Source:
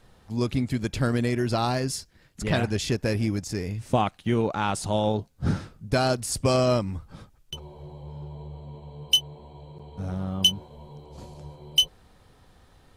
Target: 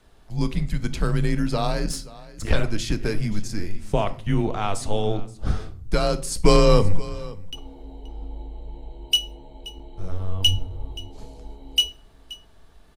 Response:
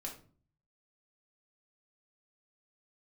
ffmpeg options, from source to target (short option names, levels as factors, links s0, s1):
-filter_complex "[0:a]highpass=60,lowshelf=f=95:g=11.5,asettb=1/sr,asplit=3[s0][s1][s2];[s0]atrim=end=6.444[s3];[s1]atrim=start=6.44:end=6.98,asetpts=PTS-STARTPTS,afade=t=in:d=0.004:c=qsin,afade=t=out:st=0.536:d=0.004:c=qsin,acontrast=88[s4];[s2]atrim=start=6.976[s5];[s3][s4]acrossfade=d=0.004:c1=hsin:c2=qsin[s6];[s6][s5]acrossfade=d=0.004:c1=qsin:c2=hsin,asettb=1/sr,asplit=3[s7][s8][s9];[s7]atrim=end=10.464[s10];[s8]atrim=start=10.46:end=10.92,asetpts=PTS-STARTPTS,afade=t=in:d=0.004:c=qsin,afade=t=out:st=0.456:d=0.004:c=qsin,bass=f=250:g=13,treble=f=4000:g=-2[s11];[s9]atrim=start=10.916[s12];[s10][s11]acrossfade=d=0.004:c1=hsin:c2=qsin[s13];[s13][s12]acrossfade=d=0.004:c1=qsin:c2=hsin,afreqshift=-97,asettb=1/sr,asplit=3[s14][s15][s16];[s14]atrim=end=1.854[s17];[s15]atrim=start=1.85:end=2.54,asetpts=PTS-STARTPTS,afade=t=in:d=0.004:c=qsin,afade=t=out:st=0.686:d=0.004:c=qsin,aeval=exprs='0.473*(cos(1*acos(clip(val(0)/0.473,-1,1)))-cos(1*PI/2))+0.133*(cos(2*acos(clip(val(0)/0.473,-1,1)))-cos(2*PI/2))+0.15*(cos(4*acos(clip(val(0)/0.473,-1,1)))-cos(4*PI/2))':c=same[s18];[s16]atrim=start=2.536[s19];[s17][s18]acrossfade=d=0.004:c1=hsin:c2=qsin[s20];[s20][s19]acrossfade=d=0.004:c1=qsin:c2=hsin,aecho=1:1:527:0.112,asplit=2[s21][s22];[1:a]atrim=start_sample=2205,asetrate=36603,aresample=44100[s23];[s22][s23]afir=irnorm=-1:irlink=0,volume=0.501[s24];[s21][s24]amix=inputs=2:normalize=0,volume=0.75"